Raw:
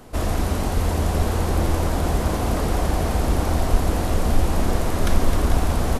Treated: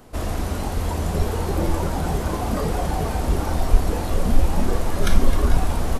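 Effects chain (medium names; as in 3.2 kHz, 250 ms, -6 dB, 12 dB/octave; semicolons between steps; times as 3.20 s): spectral noise reduction 7 dB; trim +4 dB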